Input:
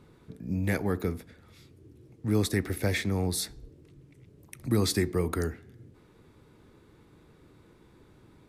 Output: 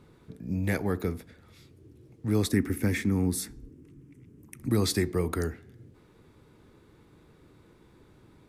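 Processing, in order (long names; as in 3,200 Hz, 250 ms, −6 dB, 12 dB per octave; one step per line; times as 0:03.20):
0:02.52–0:04.69: graphic EQ with 15 bands 250 Hz +10 dB, 630 Hz −11 dB, 4,000 Hz −10 dB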